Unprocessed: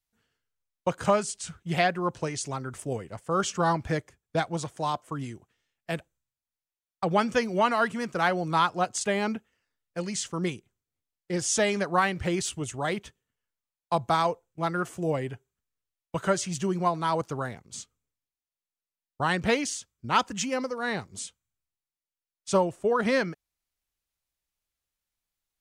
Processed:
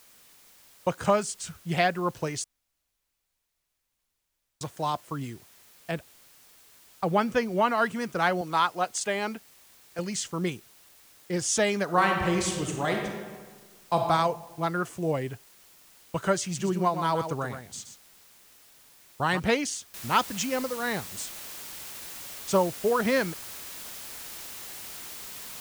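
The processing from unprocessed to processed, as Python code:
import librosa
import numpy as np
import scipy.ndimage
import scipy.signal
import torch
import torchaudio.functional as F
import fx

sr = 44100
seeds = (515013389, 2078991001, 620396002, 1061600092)

y = fx.high_shelf(x, sr, hz=4200.0, db=-8.5, at=(5.91, 7.78))
y = fx.highpass(y, sr, hz=390.0, slope=6, at=(8.41, 9.99))
y = fx.reverb_throw(y, sr, start_s=11.84, length_s=2.16, rt60_s=1.5, drr_db=1.5)
y = fx.echo_single(y, sr, ms=124, db=-8.5, at=(16.55, 19.38), fade=0.02)
y = fx.noise_floor_step(y, sr, seeds[0], at_s=19.94, before_db=-56, after_db=-41, tilt_db=0.0)
y = fx.edit(y, sr, fx.room_tone_fill(start_s=2.44, length_s=2.17), tone=tone)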